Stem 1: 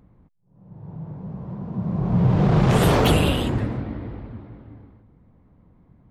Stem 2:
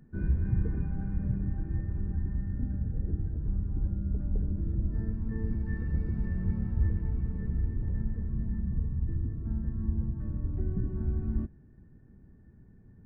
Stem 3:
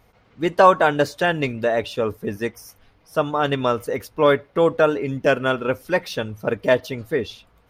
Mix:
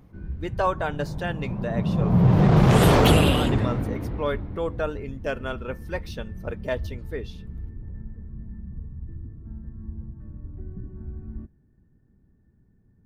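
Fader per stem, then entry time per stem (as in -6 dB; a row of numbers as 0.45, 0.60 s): +1.0, -6.0, -11.0 dB; 0.00, 0.00, 0.00 s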